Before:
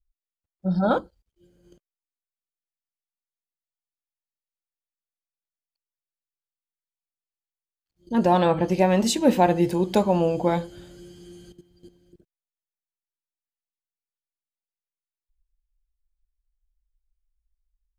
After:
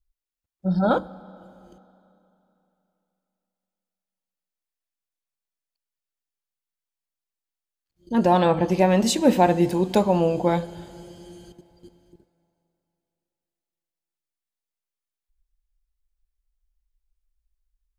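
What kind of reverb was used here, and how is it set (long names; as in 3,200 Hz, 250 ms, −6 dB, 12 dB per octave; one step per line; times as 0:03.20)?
four-comb reverb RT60 3.1 s, combs from 32 ms, DRR 19 dB
level +1 dB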